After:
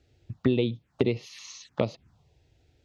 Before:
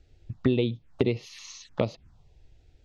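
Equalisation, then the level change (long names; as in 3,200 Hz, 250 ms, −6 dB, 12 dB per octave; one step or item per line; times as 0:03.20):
high-pass filter 86 Hz 12 dB per octave
0.0 dB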